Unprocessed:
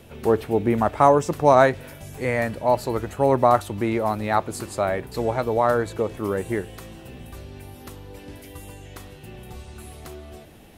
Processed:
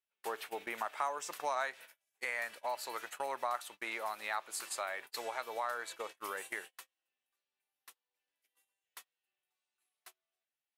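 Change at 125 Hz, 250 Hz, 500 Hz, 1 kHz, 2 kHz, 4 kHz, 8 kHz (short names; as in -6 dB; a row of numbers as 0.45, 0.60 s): under -40 dB, -30.5 dB, -22.5 dB, -16.5 dB, -9.0 dB, -6.5 dB, -5.5 dB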